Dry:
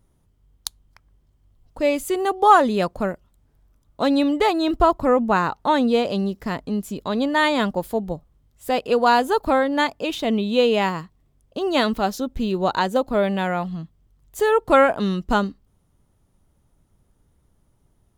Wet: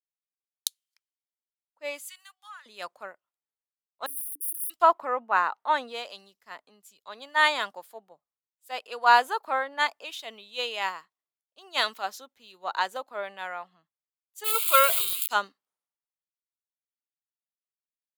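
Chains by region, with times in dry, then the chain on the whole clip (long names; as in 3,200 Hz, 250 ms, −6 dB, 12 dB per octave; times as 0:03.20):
0:02.04–0:02.66: high-pass filter 1,400 Hz 24 dB per octave + downward compressor 4 to 1, threshold −29 dBFS
0:04.06–0:04.70: wrap-around overflow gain 18 dB + linear-phase brick-wall band-stop 500–9,100 Hz
0:14.44–0:15.28: spike at every zero crossing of −11 dBFS + phaser with its sweep stopped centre 1,200 Hz, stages 8
whole clip: high-pass filter 970 Hz 12 dB per octave; multiband upward and downward expander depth 100%; level −5 dB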